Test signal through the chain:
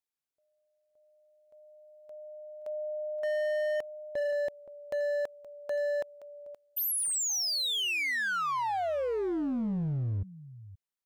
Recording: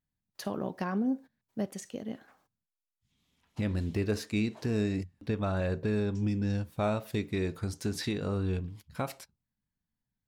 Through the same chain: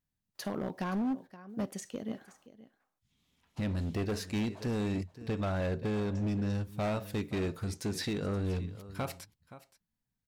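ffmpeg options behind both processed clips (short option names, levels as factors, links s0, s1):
-af "aecho=1:1:523:0.133,volume=26.6,asoftclip=hard,volume=0.0376"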